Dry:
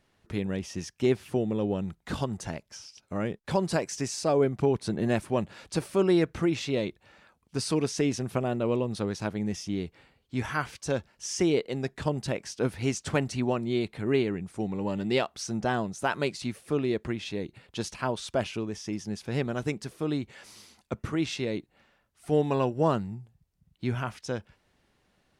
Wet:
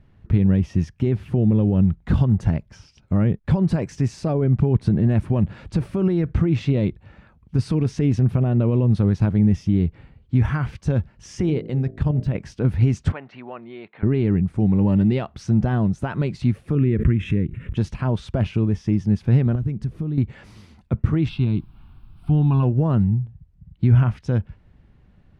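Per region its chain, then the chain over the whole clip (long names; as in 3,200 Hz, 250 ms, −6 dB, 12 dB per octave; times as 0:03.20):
0:11.40–0:12.35: running median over 3 samples + hum removal 54.95 Hz, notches 13 + output level in coarse steps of 9 dB
0:13.12–0:14.03: downward compressor 2.5 to 1, threshold −29 dBFS + band-pass filter 740–3,200 Hz + high-frequency loss of the air 130 metres
0:16.75–0:17.77: phaser with its sweep stopped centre 1,900 Hz, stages 4 + background raised ahead of every attack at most 44 dB per second
0:19.55–0:20.18: low-shelf EQ 280 Hz +10.5 dB + downward compressor 3 to 1, threshold −42 dBFS
0:21.28–0:22.62: background noise pink −63 dBFS + phaser with its sweep stopped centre 1,900 Hz, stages 6
whole clip: low-shelf EQ 150 Hz +5.5 dB; brickwall limiter −22 dBFS; bass and treble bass +14 dB, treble −15 dB; level +3.5 dB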